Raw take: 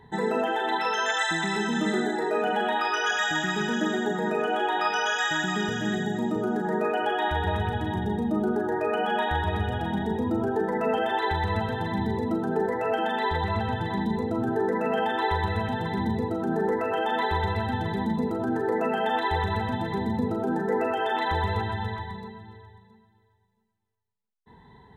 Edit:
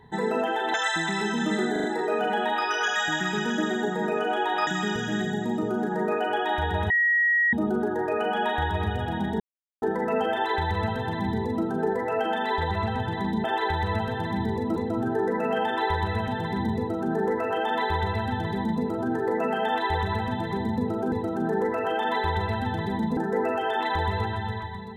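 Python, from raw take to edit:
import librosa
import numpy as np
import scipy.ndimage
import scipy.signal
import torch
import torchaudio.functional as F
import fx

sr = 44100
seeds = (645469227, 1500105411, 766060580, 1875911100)

y = fx.edit(x, sr, fx.cut(start_s=0.74, length_s=0.35),
    fx.stutter(start_s=2.07, slice_s=0.04, count=4),
    fx.cut(start_s=4.9, length_s=0.5),
    fx.bleep(start_s=7.63, length_s=0.63, hz=1900.0, db=-18.5),
    fx.silence(start_s=10.13, length_s=0.42),
    fx.duplicate(start_s=11.05, length_s=1.32, to_s=14.17),
    fx.duplicate(start_s=16.19, length_s=2.05, to_s=20.53), tone=tone)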